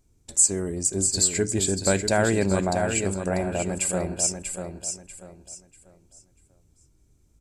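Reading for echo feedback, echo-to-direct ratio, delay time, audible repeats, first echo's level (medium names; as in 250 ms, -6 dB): 29%, -6.5 dB, 641 ms, 3, -7.0 dB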